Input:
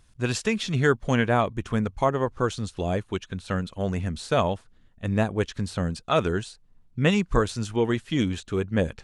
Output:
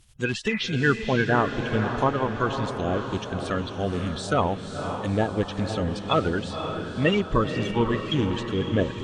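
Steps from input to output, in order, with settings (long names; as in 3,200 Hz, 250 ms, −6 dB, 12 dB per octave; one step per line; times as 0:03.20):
spectral magnitudes quantised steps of 30 dB
treble cut that deepens with the level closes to 2,500 Hz, closed at −21.5 dBFS
high-shelf EQ 7,200 Hz +8.5 dB
healed spectral selection 0:00.53–0:00.74, 820–2,600 Hz both
parametric band 3,100 Hz +6.5 dB 0.58 octaves
on a send: feedback delay with all-pass diffusion 521 ms, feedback 57%, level −7 dB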